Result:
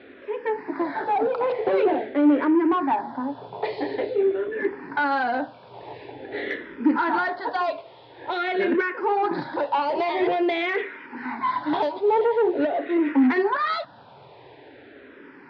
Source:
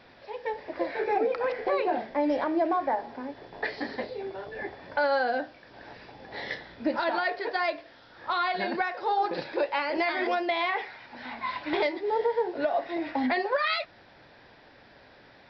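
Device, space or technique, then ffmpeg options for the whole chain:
barber-pole phaser into a guitar amplifier: -filter_complex "[0:a]asplit=2[a][b];[b]afreqshift=-0.47[c];[a][c]amix=inputs=2:normalize=1,asoftclip=type=tanh:threshold=-27.5dB,highpass=97,equalizer=f=130:t=q:w=4:g=7,equalizer=f=280:t=q:w=4:g=10,equalizer=f=400:t=q:w=4:g=10,equalizer=f=940:t=q:w=4:g=7,equalizer=f=1.4k:t=q:w=4:g=3,lowpass=f=3.9k:w=0.5412,lowpass=f=3.9k:w=1.3066,volume=6dB"

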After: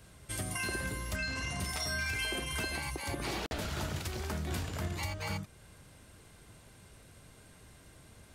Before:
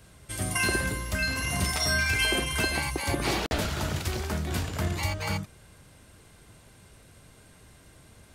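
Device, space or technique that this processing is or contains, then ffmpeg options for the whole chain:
clipper into limiter: -filter_complex "[0:a]asoftclip=type=hard:threshold=-15.5dB,alimiter=limit=-23dB:level=0:latency=1:release=319,asettb=1/sr,asplit=3[a][b][c];[a]atrim=end=1.164[d];[b]atrim=start=1.16:end=1.6,asetpts=PTS-STARTPTS,afade=t=in:d=0.004:c=qsin,afade=t=out:st=0.436:d=0.004:c=qsin,lowpass=f=8.6k:w=0.5412,lowpass=f=8.6k:w=1.3066[e];[c]atrim=start=1.596[f];[d][e]acrossfade=d=0.004:c1=hsin:c2=qsin[g];[g][f]acrossfade=d=0.004:c1=qsin:c2=hsin,volume=-2.5dB"

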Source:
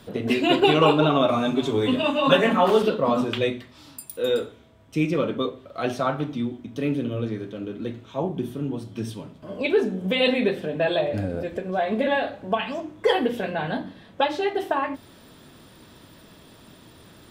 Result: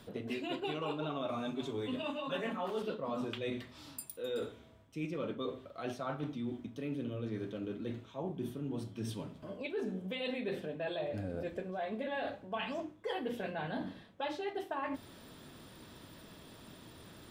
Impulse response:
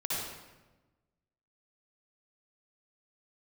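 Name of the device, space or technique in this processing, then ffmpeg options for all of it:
compression on the reversed sound: -af "areverse,acompressor=threshold=-31dB:ratio=6,areverse,volume=-4.5dB"

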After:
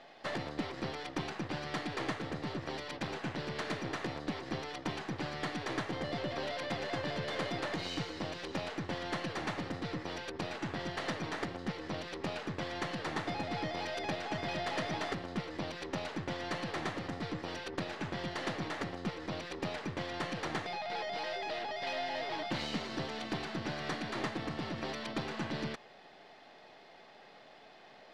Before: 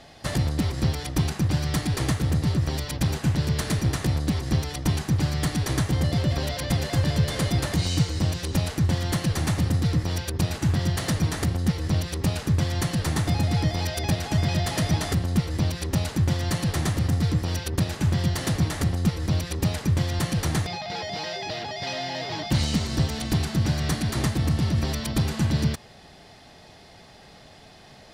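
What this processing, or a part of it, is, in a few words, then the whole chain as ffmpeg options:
crystal radio: -af "highpass=340,lowpass=3.1k,aeval=exprs='if(lt(val(0),0),0.708*val(0),val(0))':c=same,volume=-3dB"

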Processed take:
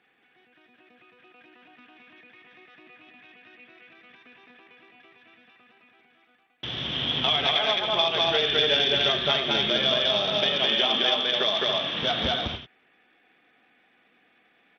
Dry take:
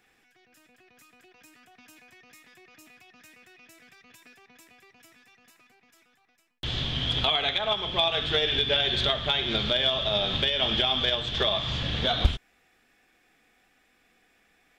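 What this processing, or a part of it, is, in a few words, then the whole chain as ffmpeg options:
Bluetooth headset: -filter_complex "[0:a]asettb=1/sr,asplit=3[a][b][c];[a]atrim=end=10.354[d];[b]atrim=start=10.35:end=12.01,asetpts=PTS-STARTPTS,afade=t=in:d=0.004:c=qsin,afade=t=out:st=1.656:d=0.004:c=qsin,highpass=190[e];[c]atrim=start=12.006[f];[d][e]acrossfade=d=0.004:c1=hsin:c2=qsin[g];[g][f]acrossfade=d=0.004:c1=qsin:c2=hsin,highpass=160,aecho=1:1:212.8|291.5:0.891|0.447,aresample=8000,aresample=44100" -ar 32000 -c:a sbc -b:a 64k

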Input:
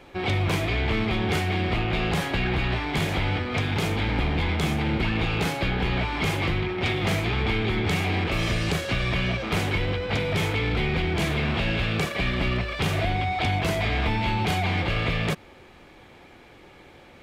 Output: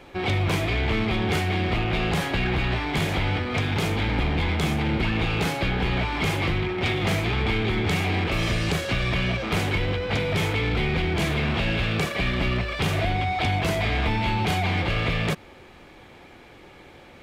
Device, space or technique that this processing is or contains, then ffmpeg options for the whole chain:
parallel distortion: -filter_complex "[0:a]asplit=2[a][b];[b]asoftclip=type=hard:threshold=-30.5dB,volume=-12.5dB[c];[a][c]amix=inputs=2:normalize=0"

